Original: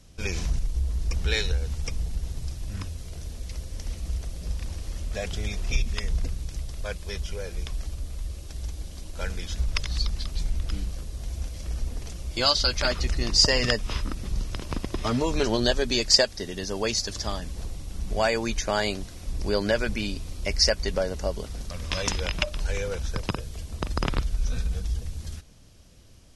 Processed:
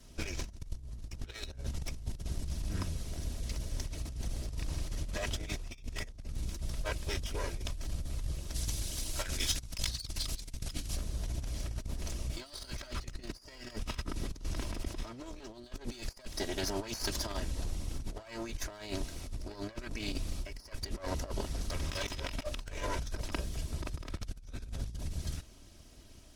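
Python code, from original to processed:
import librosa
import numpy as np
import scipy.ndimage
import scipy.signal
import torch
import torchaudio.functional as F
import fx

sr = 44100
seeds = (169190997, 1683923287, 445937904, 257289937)

y = fx.lower_of_two(x, sr, delay_ms=3.1)
y = fx.over_compress(y, sr, threshold_db=-32.0, ratio=-0.5)
y = fx.high_shelf(y, sr, hz=2500.0, db=12.0, at=(8.54, 10.95), fade=0.02)
y = y * 10.0 ** (-4.5 / 20.0)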